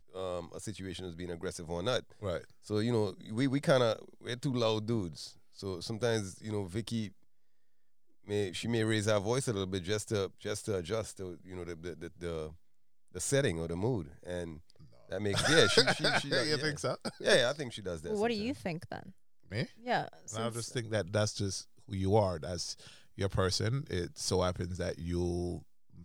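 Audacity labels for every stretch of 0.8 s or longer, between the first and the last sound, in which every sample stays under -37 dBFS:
7.070000	8.290000	silence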